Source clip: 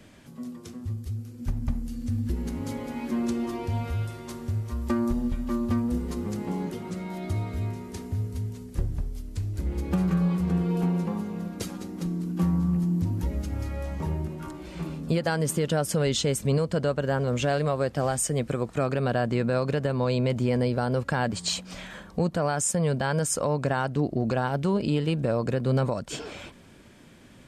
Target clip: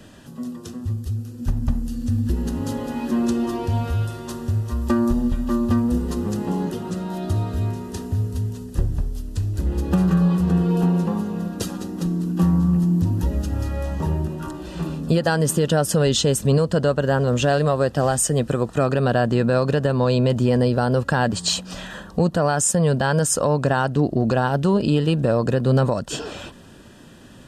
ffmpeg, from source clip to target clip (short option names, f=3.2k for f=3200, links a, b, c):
-af "acontrast=70,asuperstop=centerf=2200:order=4:qfactor=4.9"